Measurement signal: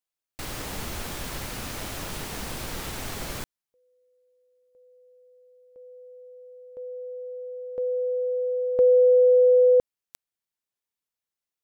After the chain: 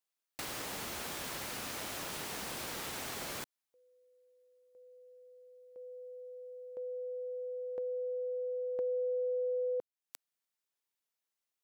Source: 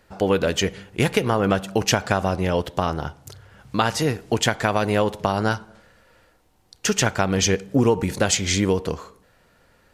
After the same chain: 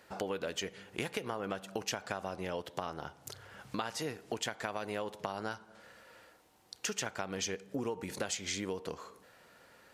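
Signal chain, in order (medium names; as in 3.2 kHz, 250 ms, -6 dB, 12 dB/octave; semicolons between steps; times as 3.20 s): high-pass 320 Hz 6 dB/octave; compression 3:1, threshold -39 dBFS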